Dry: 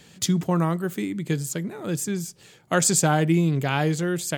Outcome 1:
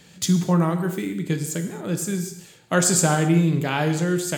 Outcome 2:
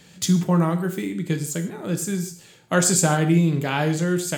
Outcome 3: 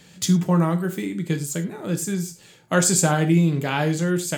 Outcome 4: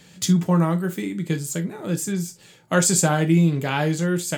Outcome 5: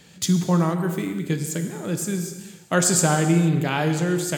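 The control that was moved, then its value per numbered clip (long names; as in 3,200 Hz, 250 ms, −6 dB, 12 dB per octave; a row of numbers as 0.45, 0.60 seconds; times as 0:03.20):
reverb whose tail is shaped and stops, gate: 300, 190, 130, 90, 500 milliseconds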